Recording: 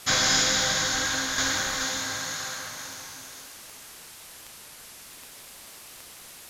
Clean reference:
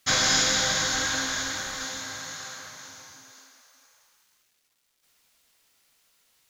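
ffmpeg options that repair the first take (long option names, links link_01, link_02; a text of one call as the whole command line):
ffmpeg -i in.wav -af "adeclick=threshold=4,afwtdn=0.0063,asetnsamples=nb_out_samples=441:pad=0,asendcmd='1.38 volume volume -5dB',volume=0dB" out.wav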